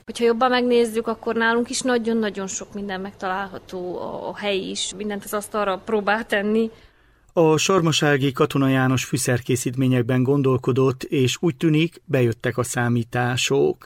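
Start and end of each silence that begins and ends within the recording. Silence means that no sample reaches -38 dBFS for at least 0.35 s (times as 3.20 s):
6.85–7.36 s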